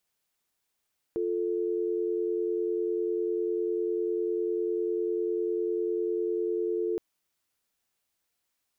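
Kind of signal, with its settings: call progress tone dial tone, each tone -29 dBFS 5.82 s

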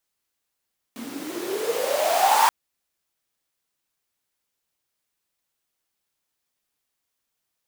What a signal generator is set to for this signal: swept filtered noise pink, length 1.53 s highpass, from 230 Hz, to 940 Hz, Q 12, exponential, gain ramp +20 dB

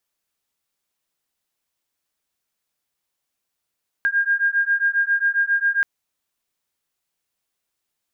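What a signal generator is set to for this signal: beating tones 1.61 kHz, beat 7.4 Hz, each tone -20 dBFS 1.78 s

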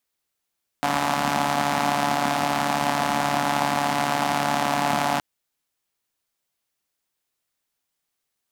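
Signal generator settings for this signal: four-cylinder engine model, steady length 4.37 s, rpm 4300, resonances 240/750 Hz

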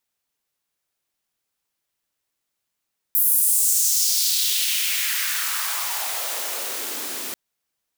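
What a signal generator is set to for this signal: swept filtered noise white, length 4.19 s highpass, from 13 kHz, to 220 Hz, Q 2.2, exponential, gain ramp -12 dB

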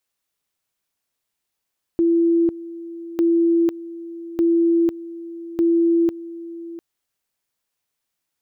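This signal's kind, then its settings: two-level tone 336 Hz -13.5 dBFS, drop 17 dB, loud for 0.50 s, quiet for 0.70 s, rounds 4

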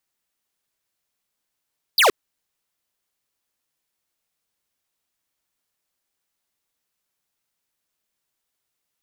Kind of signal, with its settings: laser zap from 5.1 kHz, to 340 Hz, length 0.12 s square, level -14.5 dB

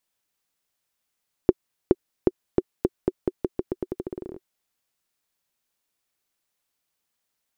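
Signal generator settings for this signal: bouncing ball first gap 0.42 s, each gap 0.86, 368 Hz, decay 38 ms -2.5 dBFS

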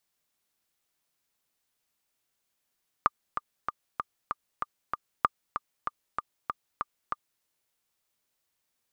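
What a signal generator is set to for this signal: metronome 192 bpm, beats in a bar 7, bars 2, 1.2 kHz, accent 9 dB -7.5 dBFS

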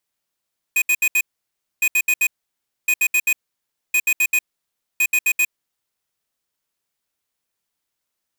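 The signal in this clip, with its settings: beep pattern square 2.49 kHz, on 0.06 s, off 0.07 s, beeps 4, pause 0.61 s, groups 5, -16.5 dBFS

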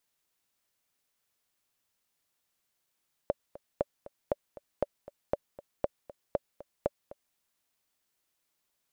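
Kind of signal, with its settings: metronome 236 bpm, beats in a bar 2, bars 8, 575 Hz, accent 18 dB -13.5 dBFS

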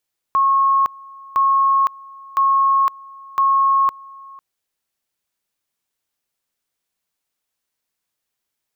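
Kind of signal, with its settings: two-level tone 1.09 kHz -12 dBFS, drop 24 dB, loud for 0.51 s, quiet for 0.50 s, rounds 4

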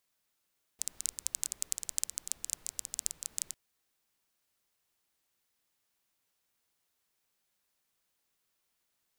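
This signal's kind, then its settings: rain from filtered ticks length 2.75 s, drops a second 14, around 7.5 kHz, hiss -22 dB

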